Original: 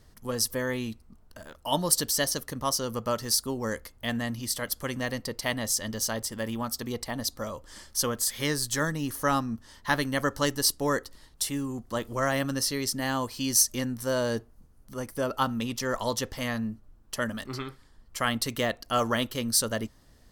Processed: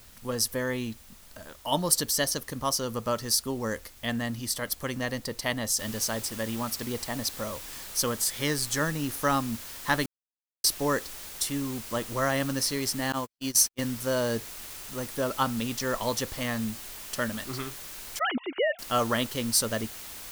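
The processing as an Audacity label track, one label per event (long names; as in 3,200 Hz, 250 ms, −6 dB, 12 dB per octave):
5.790000	5.790000	noise floor change −54 dB −42 dB
10.060000	10.640000	silence
13.120000	13.790000	noise gate −29 dBFS, range −56 dB
18.190000	18.790000	three sine waves on the formant tracks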